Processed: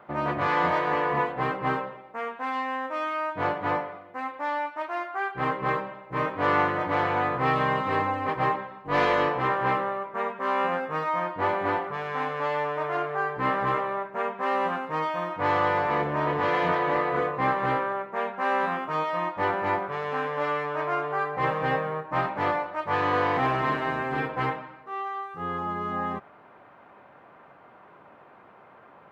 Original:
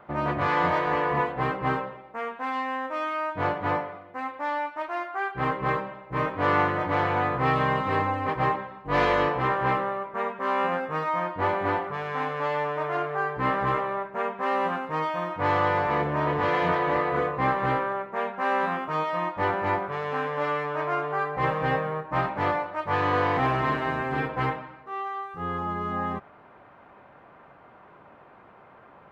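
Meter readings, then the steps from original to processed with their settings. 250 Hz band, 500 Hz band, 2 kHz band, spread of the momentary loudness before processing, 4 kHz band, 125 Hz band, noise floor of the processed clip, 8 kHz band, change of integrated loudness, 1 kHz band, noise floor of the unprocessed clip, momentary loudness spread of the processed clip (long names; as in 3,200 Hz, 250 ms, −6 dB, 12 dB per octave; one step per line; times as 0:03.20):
−1.0 dB, −0.5 dB, 0.0 dB, 7 LU, 0.0 dB, −3.5 dB, −52 dBFS, can't be measured, −0.5 dB, 0.0 dB, −52 dBFS, 7 LU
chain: high-pass filter 140 Hz 6 dB per octave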